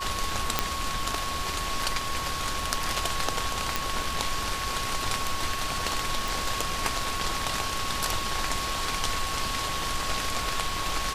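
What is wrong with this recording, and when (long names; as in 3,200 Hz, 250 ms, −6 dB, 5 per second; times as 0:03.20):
surface crackle 19 per second −36 dBFS
whistle 1,100 Hz −33 dBFS
0:00.59: click −4 dBFS
0:03.76: click −8 dBFS
0:06.28: click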